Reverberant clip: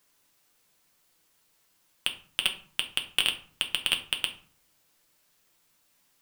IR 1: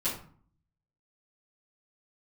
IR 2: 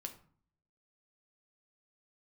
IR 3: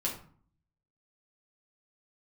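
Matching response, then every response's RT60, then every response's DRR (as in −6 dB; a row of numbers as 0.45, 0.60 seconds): 2; 0.50, 0.50, 0.50 seconds; −12.5, 4.0, −4.5 decibels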